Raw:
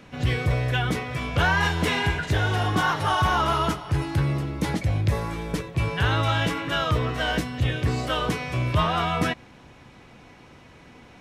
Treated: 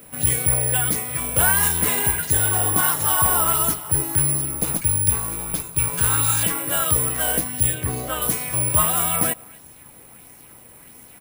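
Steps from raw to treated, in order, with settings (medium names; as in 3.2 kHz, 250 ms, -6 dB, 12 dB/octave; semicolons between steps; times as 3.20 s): 4.60–6.43 s: comb filter that takes the minimum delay 0.8 ms; speakerphone echo 250 ms, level -24 dB; careless resampling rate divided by 4×, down none, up zero stuff; 7.74–8.22 s: treble shelf 4.7 kHz -9.5 dB; sweeping bell 1.5 Hz 460–6700 Hz +6 dB; trim -3 dB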